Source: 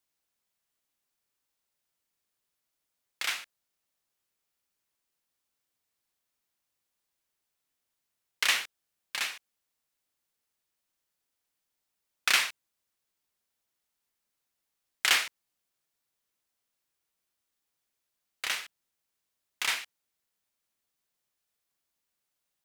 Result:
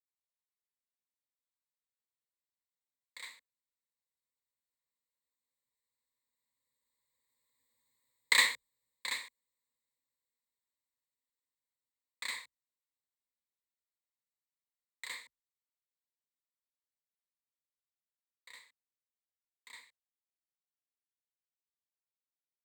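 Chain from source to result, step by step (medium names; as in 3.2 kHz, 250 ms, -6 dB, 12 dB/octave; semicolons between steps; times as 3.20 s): Doppler pass-by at 7.86 s, 5 m/s, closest 2.8 m; rippled EQ curve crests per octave 1, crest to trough 18 dB; trim -1 dB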